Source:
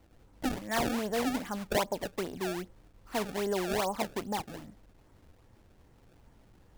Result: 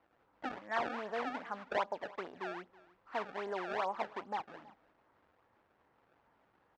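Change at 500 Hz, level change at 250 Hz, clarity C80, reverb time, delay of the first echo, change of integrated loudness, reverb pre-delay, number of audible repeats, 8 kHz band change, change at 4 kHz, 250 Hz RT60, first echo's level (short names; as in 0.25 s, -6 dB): -7.0 dB, -13.5 dB, none, none, 0.324 s, -6.5 dB, none, 1, under -20 dB, -11.5 dB, none, -21.5 dB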